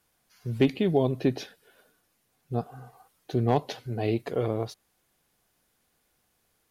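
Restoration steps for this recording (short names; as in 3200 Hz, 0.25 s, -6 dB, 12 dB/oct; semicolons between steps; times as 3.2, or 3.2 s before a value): clip repair -11.5 dBFS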